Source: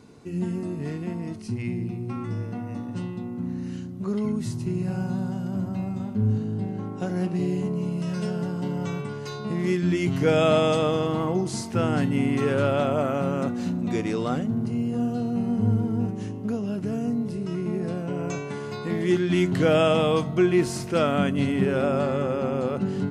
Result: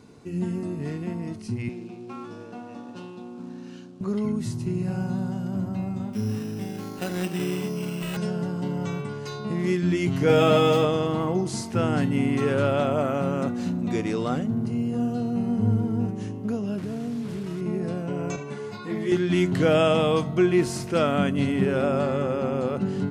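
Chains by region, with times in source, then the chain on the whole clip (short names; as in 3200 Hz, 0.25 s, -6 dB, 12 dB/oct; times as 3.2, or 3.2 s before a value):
1.69–4.01 CVSD 64 kbps + BPF 330–5500 Hz + notch 2000 Hz, Q 5.8
6.13–8.17 weighting filter D + careless resampling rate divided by 8×, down none, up hold
10.28–10.85 median filter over 5 samples + doubler 15 ms -2.5 dB
16.78–17.61 delta modulation 64 kbps, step -34 dBFS + high shelf 3600 Hz -8 dB + compressor 2.5:1, threshold -28 dBFS
18.36–19.12 HPF 47 Hz + ensemble effect
whole clip: dry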